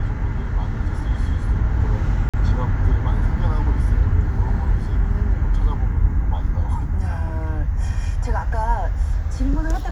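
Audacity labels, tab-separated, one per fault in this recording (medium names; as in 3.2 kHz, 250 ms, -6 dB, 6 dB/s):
2.290000	2.340000	dropout 46 ms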